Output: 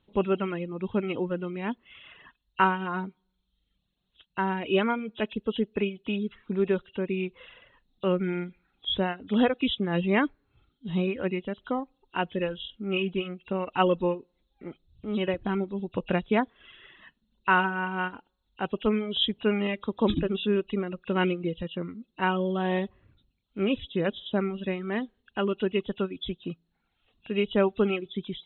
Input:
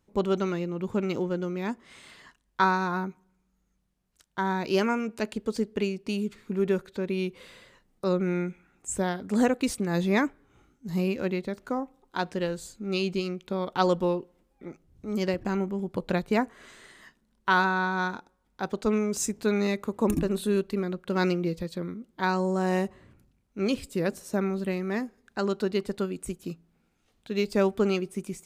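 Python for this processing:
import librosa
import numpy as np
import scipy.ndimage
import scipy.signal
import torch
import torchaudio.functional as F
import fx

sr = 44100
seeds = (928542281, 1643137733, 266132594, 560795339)

y = fx.freq_compress(x, sr, knee_hz=2500.0, ratio=4.0)
y = fx.dereverb_blind(y, sr, rt60_s=0.75)
y = F.gain(torch.from_numpy(y), 1.0).numpy()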